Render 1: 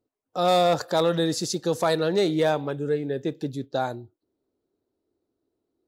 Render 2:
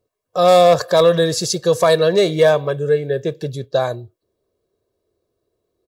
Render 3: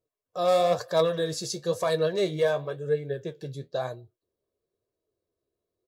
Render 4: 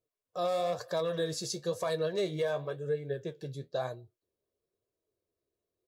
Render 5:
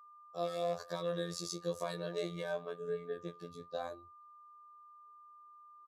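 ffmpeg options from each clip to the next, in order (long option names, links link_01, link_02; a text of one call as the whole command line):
ffmpeg -i in.wav -af "aecho=1:1:1.8:0.73,volume=6.5dB" out.wav
ffmpeg -i in.wav -af "flanger=delay=6.2:depth=8.7:regen=51:speed=1:shape=sinusoidal,volume=-8dB" out.wav
ffmpeg -i in.wav -af "alimiter=limit=-19dB:level=0:latency=1:release=155,volume=-3.5dB" out.wav
ffmpeg -i in.wav -af "afftfilt=real='hypot(re,im)*cos(PI*b)':imag='0':win_size=2048:overlap=0.75,aeval=exprs='val(0)+0.00224*sin(2*PI*1200*n/s)':channel_layout=same,aresample=32000,aresample=44100,volume=-2dB" out.wav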